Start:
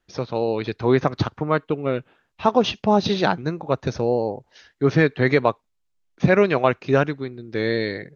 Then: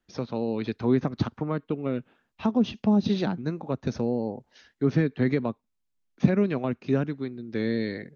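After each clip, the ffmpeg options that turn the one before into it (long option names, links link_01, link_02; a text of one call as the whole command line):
ffmpeg -i in.wav -filter_complex "[0:a]acrossover=split=370[link_01][link_02];[link_02]acompressor=threshold=-26dB:ratio=6[link_03];[link_01][link_03]amix=inputs=2:normalize=0,equalizer=frequency=230:width_type=o:width=0.55:gain=8.5,volume=-5.5dB" out.wav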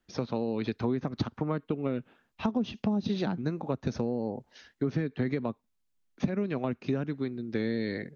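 ffmpeg -i in.wav -af "acompressor=threshold=-27dB:ratio=6,volume=1.5dB" out.wav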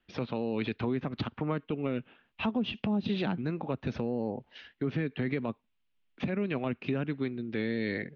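ffmpeg -i in.wav -af "alimiter=limit=-22dB:level=0:latency=1:release=15,lowpass=frequency=2900:width_type=q:width=2.6" out.wav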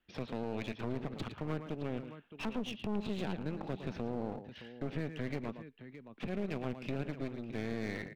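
ffmpeg -i in.wav -af "aecho=1:1:111|617:0.282|0.188,aeval=exprs='clip(val(0),-1,0.00944)':channel_layout=same,volume=-4.5dB" out.wav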